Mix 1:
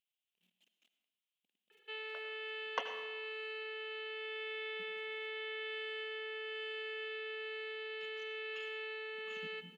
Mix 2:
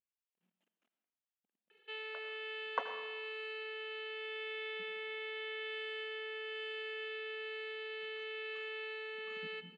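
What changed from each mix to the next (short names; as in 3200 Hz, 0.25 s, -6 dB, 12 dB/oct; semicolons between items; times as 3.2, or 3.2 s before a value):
speech: add resonant high shelf 2100 Hz -13.5 dB, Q 1.5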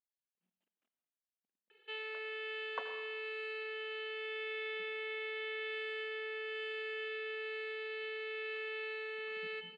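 speech -6.0 dB; background: send +6.0 dB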